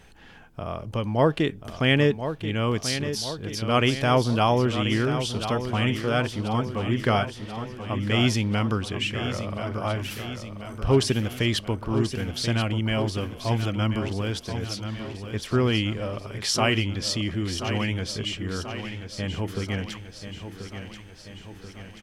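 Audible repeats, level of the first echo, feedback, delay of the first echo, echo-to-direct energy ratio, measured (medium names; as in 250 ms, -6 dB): 6, -9.5 dB, 58%, 1034 ms, -7.5 dB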